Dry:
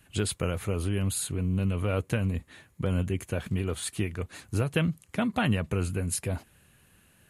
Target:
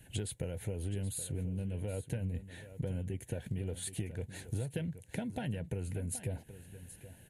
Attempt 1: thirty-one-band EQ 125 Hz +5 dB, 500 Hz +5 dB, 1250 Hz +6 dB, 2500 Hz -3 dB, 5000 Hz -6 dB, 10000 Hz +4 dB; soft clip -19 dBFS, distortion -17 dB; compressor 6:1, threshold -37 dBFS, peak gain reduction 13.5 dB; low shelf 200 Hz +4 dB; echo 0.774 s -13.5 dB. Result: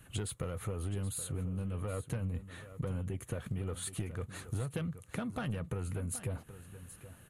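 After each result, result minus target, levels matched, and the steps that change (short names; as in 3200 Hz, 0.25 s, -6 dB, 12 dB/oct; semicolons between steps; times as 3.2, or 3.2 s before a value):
soft clip: distortion +12 dB; 1000 Hz band +5.0 dB
change: soft clip -11 dBFS, distortion -29 dB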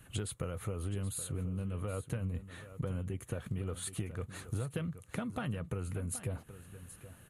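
1000 Hz band +5.0 dB
add after compressor: Butterworth band-stop 1200 Hz, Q 1.9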